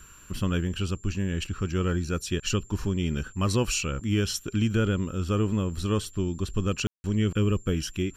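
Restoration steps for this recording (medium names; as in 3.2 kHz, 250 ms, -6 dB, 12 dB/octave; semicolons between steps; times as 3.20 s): band-stop 7.3 kHz, Q 30; room tone fill 6.87–7.04 s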